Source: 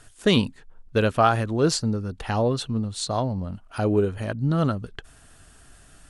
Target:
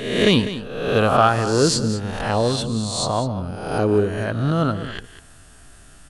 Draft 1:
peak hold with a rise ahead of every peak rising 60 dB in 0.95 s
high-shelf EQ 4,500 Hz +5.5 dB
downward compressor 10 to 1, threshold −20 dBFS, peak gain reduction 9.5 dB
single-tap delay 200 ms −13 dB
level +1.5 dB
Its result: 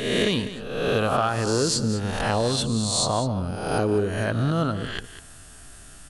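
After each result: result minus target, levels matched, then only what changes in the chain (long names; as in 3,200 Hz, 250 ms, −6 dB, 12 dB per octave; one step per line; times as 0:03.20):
downward compressor: peak gain reduction +9.5 dB; 8,000 Hz band +4.0 dB
remove: downward compressor 10 to 1, threshold −20 dBFS, peak gain reduction 9.5 dB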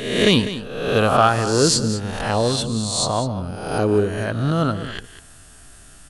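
8,000 Hz band +3.5 dB
remove: high-shelf EQ 4,500 Hz +5.5 dB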